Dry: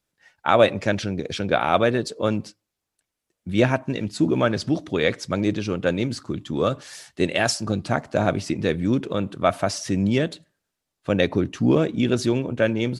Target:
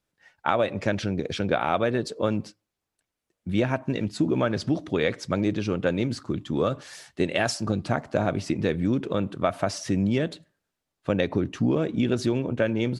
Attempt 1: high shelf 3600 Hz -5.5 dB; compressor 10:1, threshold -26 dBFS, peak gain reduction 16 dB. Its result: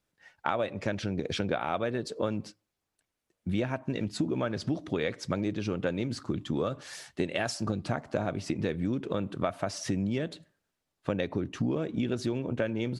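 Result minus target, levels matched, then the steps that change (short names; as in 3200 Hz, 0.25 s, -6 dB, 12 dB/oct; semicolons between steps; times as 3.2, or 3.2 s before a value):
compressor: peak gain reduction +7 dB
change: compressor 10:1, threshold -18.5 dBFS, peak gain reduction 9 dB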